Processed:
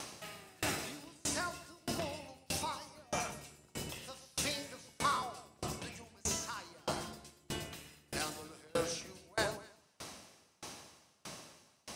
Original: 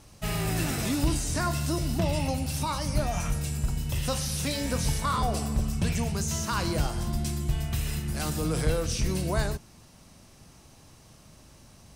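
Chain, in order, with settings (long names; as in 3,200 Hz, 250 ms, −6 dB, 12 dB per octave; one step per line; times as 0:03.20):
sub-octave generator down 1 octave, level +1 dB
meter weighting curve A
upward compression, threshold −34 dBFS
delay that swaps between a low-pass and a high-pass 125 ms, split 960 Hz, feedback 54%, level −5 dB
on a send at −19.5 dB: convolution reverb RT60 1.1 s, pre-delay 3 ms
on the sum: tremolo with a ramp in dB decaying 1.6 Hz, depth 32 dB
level +1 dB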